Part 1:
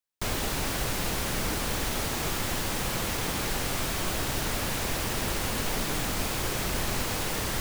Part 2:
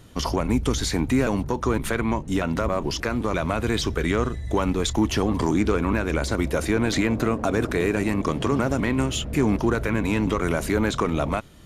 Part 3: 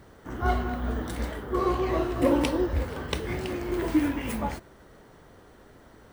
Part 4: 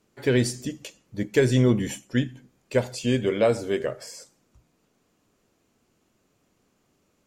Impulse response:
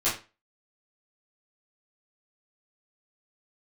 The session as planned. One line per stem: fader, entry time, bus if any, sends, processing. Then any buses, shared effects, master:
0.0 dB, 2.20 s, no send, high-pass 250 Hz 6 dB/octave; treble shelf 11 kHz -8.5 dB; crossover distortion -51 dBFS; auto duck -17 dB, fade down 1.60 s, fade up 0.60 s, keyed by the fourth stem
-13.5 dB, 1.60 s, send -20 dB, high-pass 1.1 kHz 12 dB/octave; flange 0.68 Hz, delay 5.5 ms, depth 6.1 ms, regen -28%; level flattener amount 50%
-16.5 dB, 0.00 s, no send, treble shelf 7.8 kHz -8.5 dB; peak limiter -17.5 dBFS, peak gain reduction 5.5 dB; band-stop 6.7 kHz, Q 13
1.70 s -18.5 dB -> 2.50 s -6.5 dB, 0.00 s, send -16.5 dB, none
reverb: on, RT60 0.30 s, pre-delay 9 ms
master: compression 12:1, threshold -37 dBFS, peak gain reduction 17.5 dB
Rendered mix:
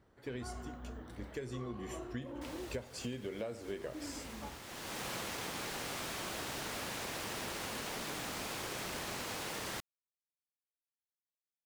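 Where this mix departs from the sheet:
stem 2: muted; reverb return -7.0 dB

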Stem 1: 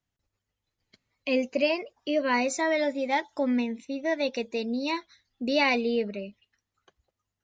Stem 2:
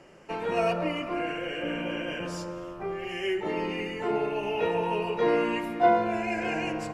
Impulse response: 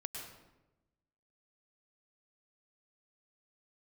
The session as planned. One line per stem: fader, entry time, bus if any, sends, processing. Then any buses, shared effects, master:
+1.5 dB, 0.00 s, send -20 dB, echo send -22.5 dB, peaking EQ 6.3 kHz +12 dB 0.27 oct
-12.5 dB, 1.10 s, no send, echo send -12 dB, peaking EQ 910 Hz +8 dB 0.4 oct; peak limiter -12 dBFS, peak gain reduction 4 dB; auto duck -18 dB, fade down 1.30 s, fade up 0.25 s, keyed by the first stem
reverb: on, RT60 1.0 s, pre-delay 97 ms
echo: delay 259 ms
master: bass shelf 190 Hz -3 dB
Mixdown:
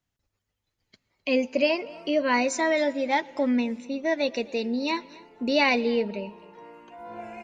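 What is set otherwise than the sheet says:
stem 1: missing peaking EQ 6.3 kHz +12 dB 0.27 oct; master: missing bass shelf 190 Hz -3 dB

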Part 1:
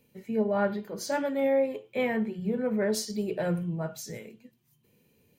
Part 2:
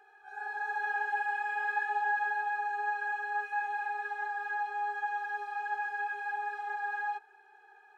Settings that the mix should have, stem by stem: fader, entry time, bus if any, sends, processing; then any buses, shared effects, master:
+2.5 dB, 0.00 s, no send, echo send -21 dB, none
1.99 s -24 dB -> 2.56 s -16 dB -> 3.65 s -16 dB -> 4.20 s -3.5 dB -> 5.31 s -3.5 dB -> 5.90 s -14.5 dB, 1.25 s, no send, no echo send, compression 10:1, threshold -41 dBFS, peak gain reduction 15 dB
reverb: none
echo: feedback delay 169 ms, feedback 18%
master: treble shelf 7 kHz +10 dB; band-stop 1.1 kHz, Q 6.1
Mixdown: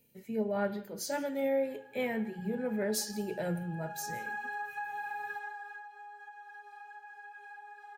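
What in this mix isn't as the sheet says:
stem 1 +2.5 dB -> -5.5 dB; stem 2 -24.0 dB -> -15.0 dB

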